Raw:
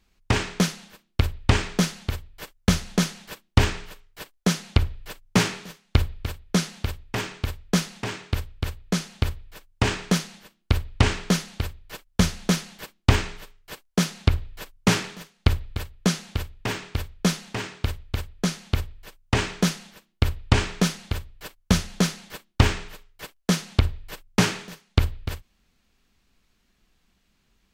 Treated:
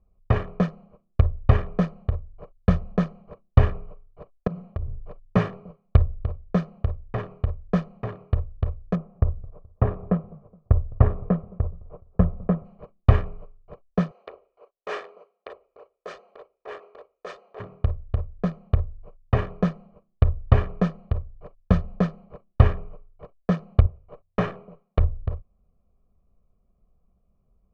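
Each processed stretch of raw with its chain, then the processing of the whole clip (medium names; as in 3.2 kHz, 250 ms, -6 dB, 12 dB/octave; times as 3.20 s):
4.47–5.01 s: treble shelf 6.4 kHz -7.5 dB + hum notches 60/120/180/240/300/360/420 Hz + compression 16:1, threshold -27 dBFS
8.95–12.65 s: low-pass 1.4 kHz + modulated delay 211 ms, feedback 42%, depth 194 cents, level -23 dB
14.11–17.60 s: elliptic band-pass 400–8700 Hz, stop band 50 dB + treble shelf 3.3 kHz +7.5 dB + transient shaper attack -10 dB, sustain 0 dB
23.86–24.99 s: high-pass 230 Hz 6 dB/octave + band-stop 4.6 kHz, Q 13 + sliding maximum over 3 samples
whole clip: local Wiener filter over 25 samples; low-pass 1.2 kHz 12 dB/octave; comb 1.7 ms, depth 64%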